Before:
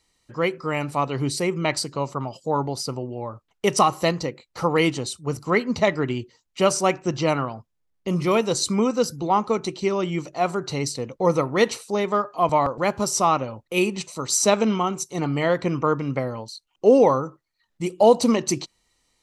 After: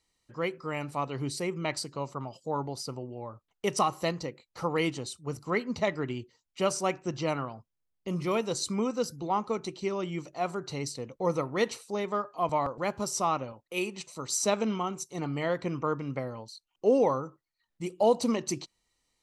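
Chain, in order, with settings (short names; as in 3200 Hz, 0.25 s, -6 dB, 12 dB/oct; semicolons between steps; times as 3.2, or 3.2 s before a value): 13.52–14.07 low shelf 210 Hz -9.5 dB; gain -8.5 dB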